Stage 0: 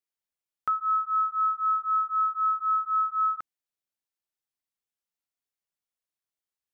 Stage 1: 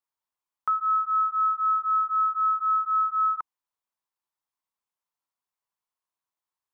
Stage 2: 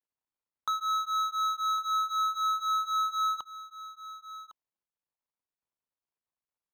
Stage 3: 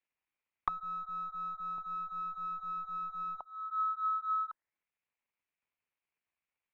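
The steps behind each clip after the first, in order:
bell 1000 Hz +14.5 dB 0.74 oct; in parallel at +0.5 dB: limiter -21 dBFS, peak gain reduction 10 dB; on the sum: gain -9 dB
median filter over 25 samples; echo 1.106 s -14.5 dB
one-sided clip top -33.5 dBFS, bottom -25.5 dBFS; envelope low-pass 710–2400 Hz down, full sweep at -36 dBFS

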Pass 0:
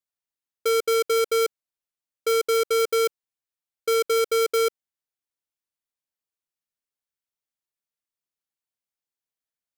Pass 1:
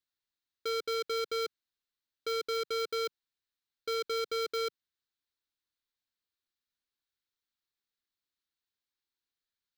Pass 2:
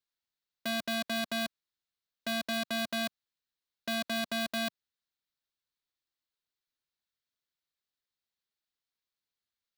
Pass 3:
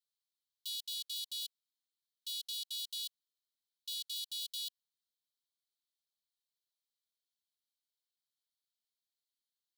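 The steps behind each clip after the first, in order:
fifteen-band EQ 160 Hz -8 dB, 630 Hz -10 dB, 1600 Hz +5 dB, 4000 Hz +11 dB, 10000 Hz -9 dB; limiter -24 dBFS, peak gain reduction 10.5 dB; tilt shelf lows +3.5 dB, about 720 Hz
cycle switcher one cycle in 2, inverted
rippled Chebyshev high-pass 3000 Hz, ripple 3 dB

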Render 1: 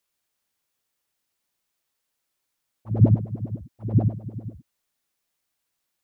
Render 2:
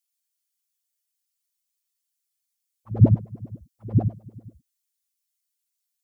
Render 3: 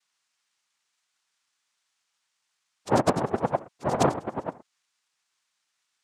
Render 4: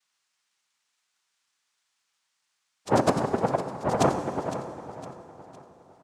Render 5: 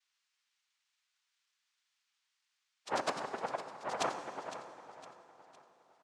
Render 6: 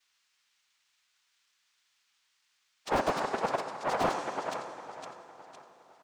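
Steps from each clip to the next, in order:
per-bin expansion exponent 1.5; gain +2.5 dB
negative-ratio compressor -24 dBFS, ratio -0.5; noise vocoder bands 2; gain +4 dB
feedback echo 0.509 s, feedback 41%, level -13 dB; plate-style reverb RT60 3.7 s, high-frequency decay 0.6×, DRR 9 dB
band-pass 2900 Hz, Q 0.62; gain -3.5 dB
slew limiter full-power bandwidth 22 Hz; gain +8.5 dB

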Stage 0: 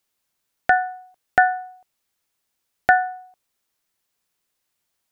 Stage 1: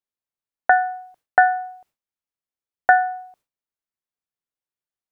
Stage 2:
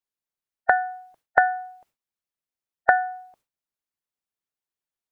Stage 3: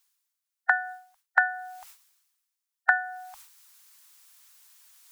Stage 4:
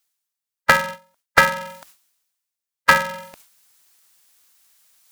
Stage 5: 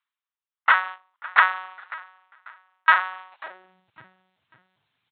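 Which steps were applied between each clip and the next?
gate with hold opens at -50 dBFS; high shelf 2300 Hz -8 dB; in parallel at -2 dB: compressor, threshold -24 dBFS, peak gain reduction 12 dB; on the sum: gain +1 dB
harmonic-percussive split harmonic -8 dB; gain +2.5 dB
inverse Chebyshev band-stop 160–410 Hz, stop band 60 dB; tone controls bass -12 dB, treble +7 dB; reverse; upward compressor, threshold -33 dBFS; reverse
sample leveller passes 2; polarity switched at an audio rate 190 Hz; gain +2.5 dB
feedback echo 0.545 s, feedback 34%, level -20 dB; LPC vocoder at 8 kHz pitch kept; high-pass sweep 1100 Hz -> 120 Hz, 3.3–3.89; gain -6 dB

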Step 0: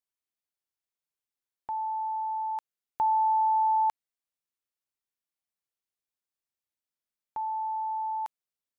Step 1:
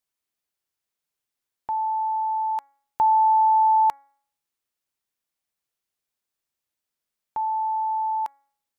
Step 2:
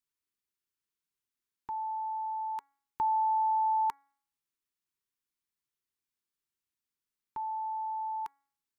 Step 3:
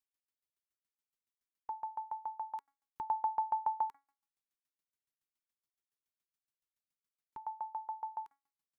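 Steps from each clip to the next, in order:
de-hum 278.2 Hz, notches 8; gain +6.5 dB
EQ curve 420 Hz 0 dB, 640 Hz -29 dB, 920 Hz -2 dB; gain -4.5 dB
dB-ramp tremolo decaying 7.1 Hz, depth 27 dB; gain +1 dB

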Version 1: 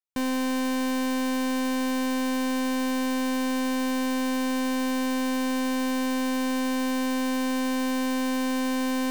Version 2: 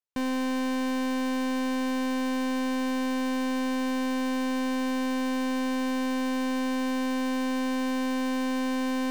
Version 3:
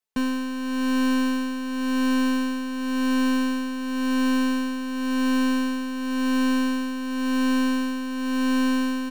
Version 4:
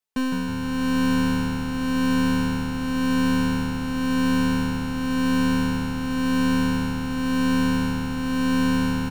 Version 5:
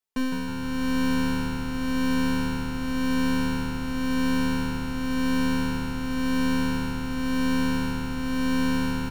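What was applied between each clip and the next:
high shelf 7200 Hz -9.5 dB; gain -1.5 dB
tremolo 0.93 Hz, depth 63%; comb 4.6 ms, depth 88%; gain +3.5 dB
frequency-shifting echo 0.157 s, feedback 56%, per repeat -76 Hz, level -7 dB
reverb RT60 0.30 s, pre-delay 3 ms, DRR 9 dB; gain -2.5 dB

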